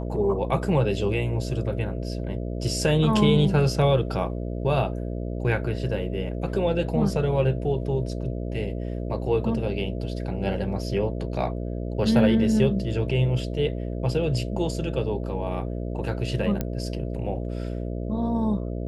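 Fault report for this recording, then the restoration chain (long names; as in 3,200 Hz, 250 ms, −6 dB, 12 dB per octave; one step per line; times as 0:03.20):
mains buzz 60 Hz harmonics 11 −30 dBFS
0:16.61: click −13 dBFS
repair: click removal
hum removal 60 Hz, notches 11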